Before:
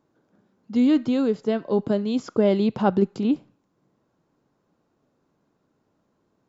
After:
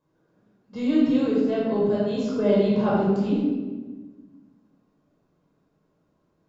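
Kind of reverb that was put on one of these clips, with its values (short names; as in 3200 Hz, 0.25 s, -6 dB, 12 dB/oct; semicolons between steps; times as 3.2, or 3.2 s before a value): shoebox room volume 1000 m³, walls mixed, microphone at 5.3 m; gain -10.5 dB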